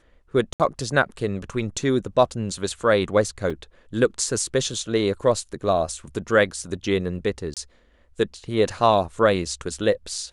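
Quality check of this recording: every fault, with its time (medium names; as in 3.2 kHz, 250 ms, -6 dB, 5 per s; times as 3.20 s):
0.53–0.60 s: dropout 68 ms
3.50 s: dropout 3.9 ms
7.54–7.57 s: dropout 27 ms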